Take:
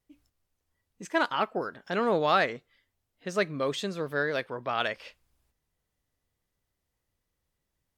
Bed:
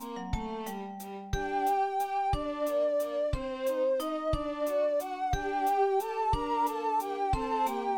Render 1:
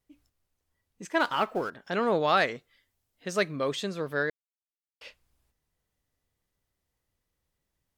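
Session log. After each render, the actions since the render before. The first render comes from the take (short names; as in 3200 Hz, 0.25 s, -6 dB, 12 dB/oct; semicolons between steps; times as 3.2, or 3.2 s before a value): 1.2–1.7 G.711 law mismatch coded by mu; 2.37–3.56 high shelf 4300 Hz +6 dB; 4.3–5.01 mute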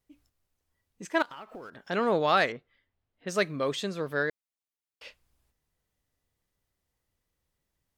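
1.22–1.76 compressor 16:1, threshold -39 dBFS; 2.52–3.28 air absorption 320 m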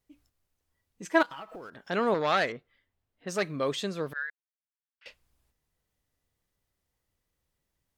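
1.05–1.56 comb 6.2 ms, depth 67%; 2.14–3.45 core saturation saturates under 1400 Hz; 4.13–5.06 ladder band-pass 1800 Hz, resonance 60%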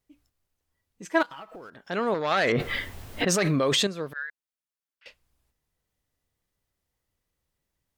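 2.31–3.87 fast leveller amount 100%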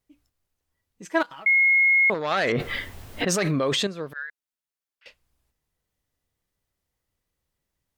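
1.46–2.1 bleep 2160 Hz -15 dBFS; 3.51–4.1 high shelf 6100 Hz -6 dB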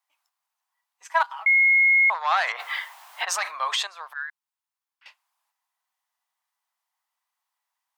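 elliptic high-pass 750 Hz, stop band 80 dB; bell 1000 Hz +10 dB 0.63 oct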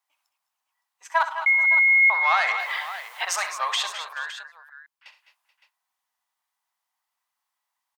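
tapped delay 65/104/206/220/431/563 ms -11.5/-19/-14/-13.5/-19.5/-13.5 dB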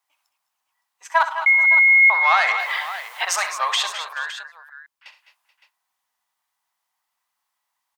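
gain +4 dB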